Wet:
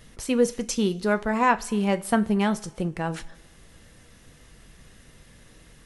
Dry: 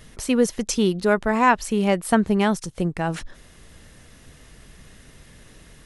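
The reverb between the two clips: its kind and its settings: two-slope reverb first 0.27 s, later 1.5 s, from -18 dB, DRR 9.5 dB; gain -4 dB

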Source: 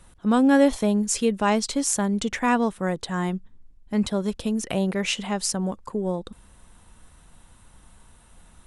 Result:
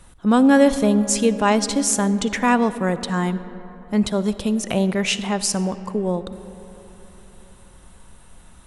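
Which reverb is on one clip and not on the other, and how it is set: digital reverb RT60 3.9 s, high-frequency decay 0.4×, pre-delay 20 ms, DRR 13.5 dB; gain +4 dB

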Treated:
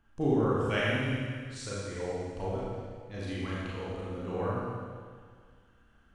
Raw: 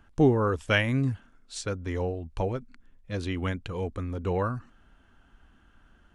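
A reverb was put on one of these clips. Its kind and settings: Schroeder reverb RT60 1.9 s, combs from 28 ms, DRR -7.5 dB; gain -11.5 dB

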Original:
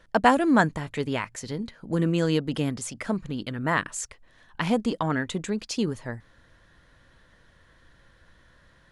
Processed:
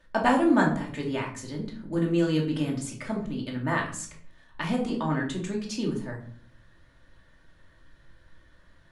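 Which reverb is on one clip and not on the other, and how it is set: shoebox room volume 540 m³, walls furnished, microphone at 2.6 m; gain -6.5 dB

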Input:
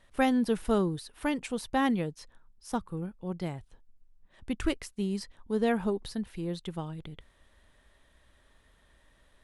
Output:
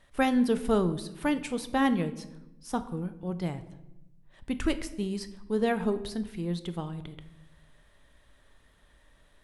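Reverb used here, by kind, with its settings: shoebox room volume 360 m³, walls mixed, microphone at 0.37 m; gain +1 dB

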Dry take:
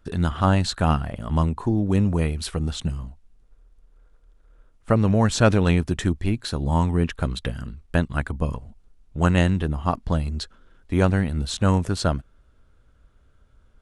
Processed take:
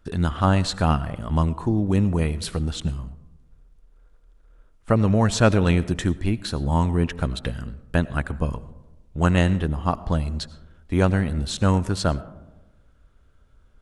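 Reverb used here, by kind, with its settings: digital reverb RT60 1.1 s, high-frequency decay 0.3×, pre-delay 55 ms, DRR 17.5 dB

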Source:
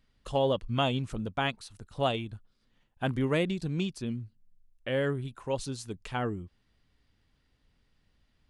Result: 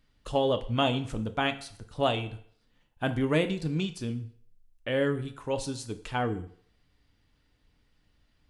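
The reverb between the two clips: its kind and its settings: FDN reverb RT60 0.58 s, low-frequency decay 0.7×, high-frequency decay 0.9×, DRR 7.5 dB; gain +1.5 dB

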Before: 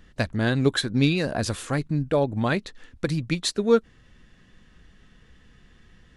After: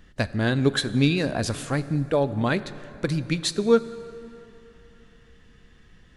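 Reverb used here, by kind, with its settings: plate-style reverb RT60 3.1 s, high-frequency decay 0.6×, DRR 14 dB

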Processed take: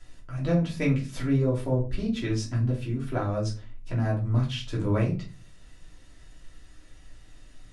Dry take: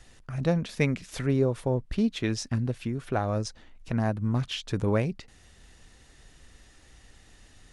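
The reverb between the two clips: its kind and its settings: shoebox room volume 160 m³, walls furnished, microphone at 2.9 m; gain -7.5 dB

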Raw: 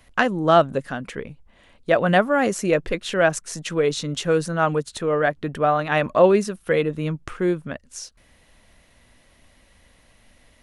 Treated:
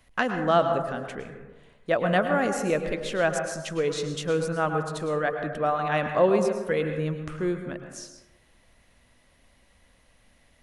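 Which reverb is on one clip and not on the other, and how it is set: plate-style reverb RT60 1.1 s, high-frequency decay 0.35×, pre-delay 95 ms, DRR 5.5 dB; gain -6 dB

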